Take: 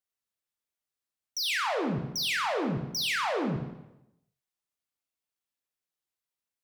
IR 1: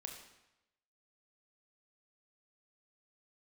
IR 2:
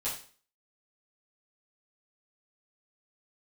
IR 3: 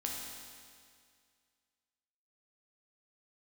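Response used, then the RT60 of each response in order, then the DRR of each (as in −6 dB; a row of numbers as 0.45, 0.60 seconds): 1; 0.90, 0.40, 2.1 seconds; 2.0, −9.0, −1.5 decibels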